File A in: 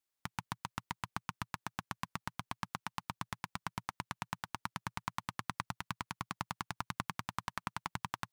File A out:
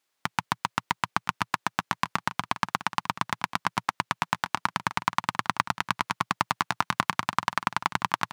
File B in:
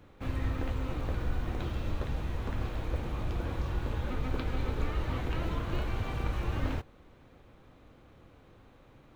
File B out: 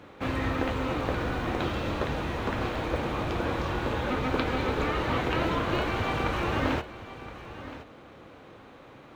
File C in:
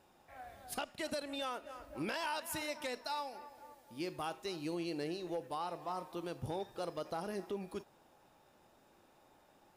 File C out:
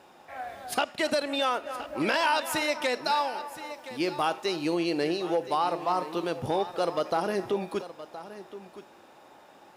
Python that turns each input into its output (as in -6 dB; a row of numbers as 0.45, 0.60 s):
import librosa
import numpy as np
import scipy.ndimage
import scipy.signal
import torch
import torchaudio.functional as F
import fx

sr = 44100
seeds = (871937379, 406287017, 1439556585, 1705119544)

y = fx.highpass(x, sr, hz=310.0, slope=6)
y = fx.high_shelf(y, sr, hz=7200.0, db=-10.0)
y = y + 10.0 ** (-14.5 / 20.0) * np.pad(y, (int(1020 * sr / 1000.0), 0))[:len(y)]
y = y * 10.0 ** (-30 / 20.0) / np.sqrt(np.mean(np.square(y)))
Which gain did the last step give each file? +15.0, +12.0, +14.0 dB